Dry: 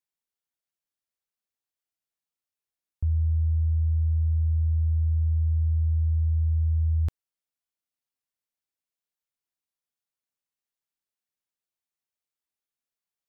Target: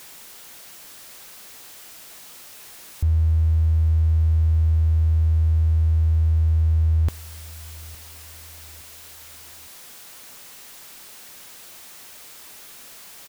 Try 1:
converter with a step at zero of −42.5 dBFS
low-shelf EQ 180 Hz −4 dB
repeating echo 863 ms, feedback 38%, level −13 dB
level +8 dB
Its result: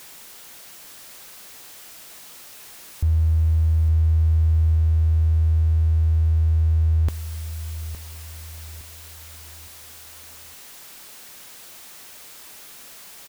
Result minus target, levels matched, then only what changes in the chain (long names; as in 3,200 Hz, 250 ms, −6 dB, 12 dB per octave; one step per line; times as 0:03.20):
echo-to-direct +9.5 dB
change: repeating echo 863 ms, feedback 38%, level −22.5 dB